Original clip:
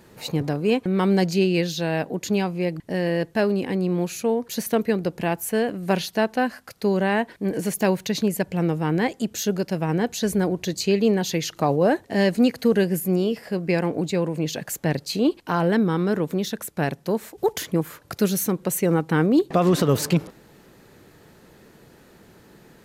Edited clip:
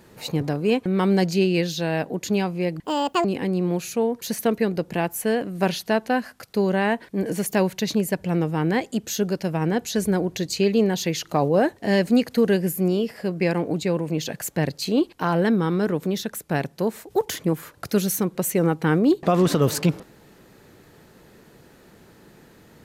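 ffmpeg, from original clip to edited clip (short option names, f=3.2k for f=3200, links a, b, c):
-filter_complex "[0:a]asplit=3[a][b][c];[a]atrim=end=2.844[d];[b]atrim=start=2.84:end=3.52,asetpts=PTS-STARTPTS,asetrate=74088,aresample=44100[e];[c]atrim=start=3.516[f];[d][e]acrossfade=d=0.004:c1=hsin:c2=hsin[g];[g][f]acrossfade=d=0.004:c1=hsin:c2=hsin"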